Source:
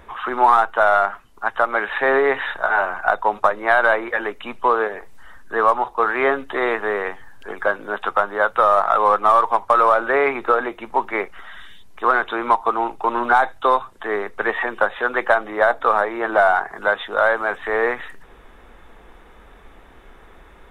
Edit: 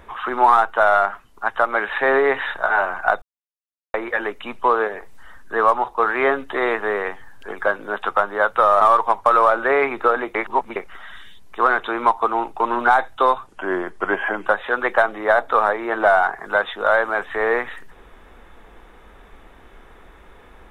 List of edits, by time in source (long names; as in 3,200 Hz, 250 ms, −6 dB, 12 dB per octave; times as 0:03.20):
0:03.22–0:03.94: silence
0:08.81–0:09.25: remove
0:10.79–0:11.20: reverse
0:13.91–0:14.78: play speed 88%